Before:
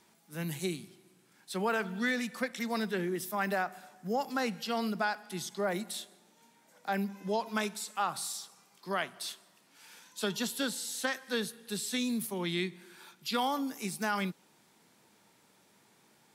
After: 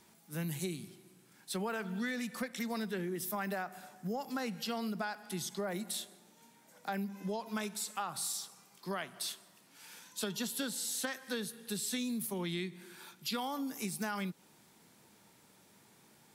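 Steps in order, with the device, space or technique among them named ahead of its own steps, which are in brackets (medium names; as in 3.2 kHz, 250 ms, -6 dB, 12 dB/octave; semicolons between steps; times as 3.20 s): ASMR close-microphone chain (bass shelf 170 Hz +7.5 dB; compression 4:1, threshold -35 dBFS, peak gain reduction 8.5 dB; treble shelf 9 kHz +6 dB)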